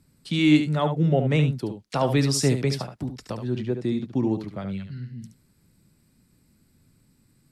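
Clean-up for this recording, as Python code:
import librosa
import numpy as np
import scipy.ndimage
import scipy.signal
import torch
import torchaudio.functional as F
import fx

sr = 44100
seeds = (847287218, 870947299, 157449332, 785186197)

y = fx.fix_echo_inverse(x, sr, delay_ms=72, level_db=-8.5)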